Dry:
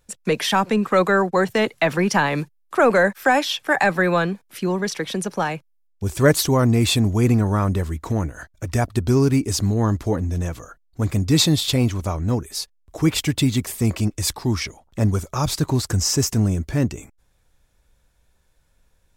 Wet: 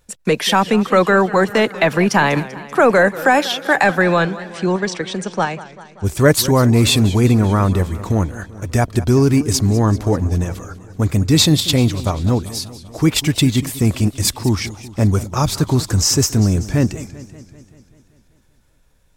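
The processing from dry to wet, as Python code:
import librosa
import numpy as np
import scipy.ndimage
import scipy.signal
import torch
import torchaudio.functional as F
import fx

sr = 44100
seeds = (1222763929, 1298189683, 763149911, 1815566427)

p1 = fx.ellip_lowpass(x, sr, hz=8400.0, order=4, stop_db=50, at=(4.02, 6.05))
p2 = fx.level_steps(p1, sr, step_db=23)
p3 = p1 + (p2 * librosa.db_to_amplitude(-2.5))
p4 = fx.echo_warbled(p3, sr, ms=194, feedback_pct=62, rate_hz=2.8, cents=158, wet_db=-16.5)
y = p4 * librosa.db_to_amplitude(1.5)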